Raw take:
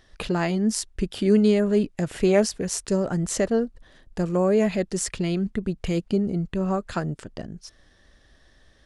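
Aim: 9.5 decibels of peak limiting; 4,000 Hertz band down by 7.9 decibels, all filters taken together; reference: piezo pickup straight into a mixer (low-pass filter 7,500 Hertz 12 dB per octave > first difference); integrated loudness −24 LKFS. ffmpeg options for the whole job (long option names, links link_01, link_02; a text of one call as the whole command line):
ffmpeg -i in.wav -af "equalizer=frequency=4000:width_type=o:gain=-4.5,alimiter=limit=-15dB:level=0:latency=1,lowpass=7500,aderivative,volume=17dB" out.wav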